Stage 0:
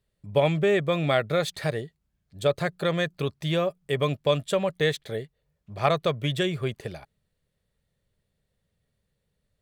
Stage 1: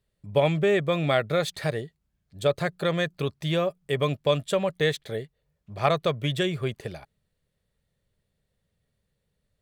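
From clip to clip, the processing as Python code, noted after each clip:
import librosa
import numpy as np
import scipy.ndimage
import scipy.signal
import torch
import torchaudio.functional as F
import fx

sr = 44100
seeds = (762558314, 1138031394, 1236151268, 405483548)

y = x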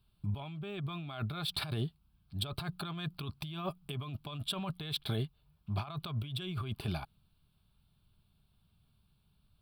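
y = fx.fixed_phaser(x, sr, hz=1900.0, stages=6)
y = fx.over_compress(y, sr, threshold_db=-38.0, ratio=-1.0)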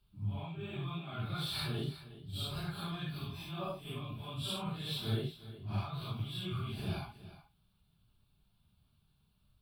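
y = fx.phase_scramble(x, sr, seeds[0], window_ms=200)
y = y + 10.0 ** (-15.0 / 20.0) * np.pad(y, (int(363 * sr / 1000.0), 0))[:len(y)]
y = F.gain(torch.from_numpy(y), -1.0).numpy()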